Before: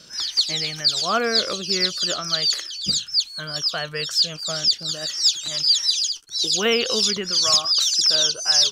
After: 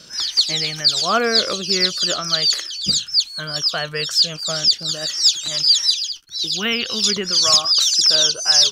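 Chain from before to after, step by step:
0:05.94–0:07.04: octave-band graphic EQ 500/1,000/8,000 Hz −12/−4/−12 dB
level +3.5 dB

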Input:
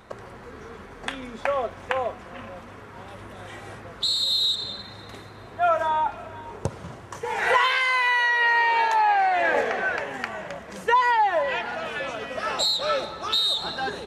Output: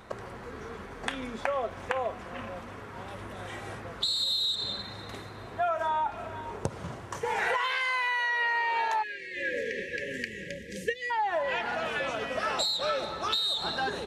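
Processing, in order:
downward compressor 5 to 1, threshold −26 dBFS, peak gain reduction 10.5 dB
time-frequency box erased 0:09.03–0:11.11, 570–1,600 Hz

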